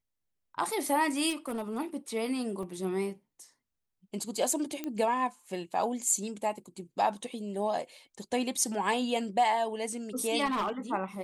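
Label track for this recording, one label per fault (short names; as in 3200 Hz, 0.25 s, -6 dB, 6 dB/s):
1.290000	1.790000	clipped -29.5 dBFS
2.630000	2.630000	gap 2.7 ms
4.840000	4.840000	pop -21 dBFS
10.450000	10.710000	clipped -26.5 dBFS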